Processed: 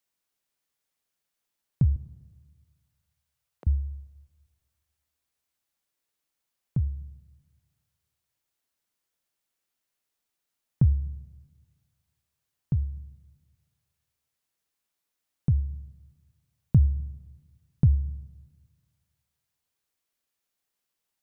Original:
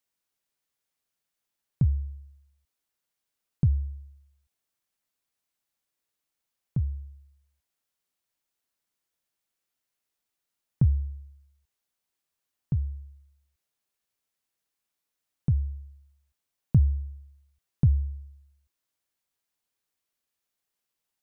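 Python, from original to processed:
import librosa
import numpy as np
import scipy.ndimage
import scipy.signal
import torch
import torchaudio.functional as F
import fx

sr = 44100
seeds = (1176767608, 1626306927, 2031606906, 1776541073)

y = fx.highpass(x, sr, hz=460.0, slope=24, at=(1.96, 3.67))
y = fx.rev_schroeder(y, sr, rt60_s=1.7, comb_ms=27, drr_db=18.5)
y = F.gain(torch.from_numpy(y), 1.0).numpy()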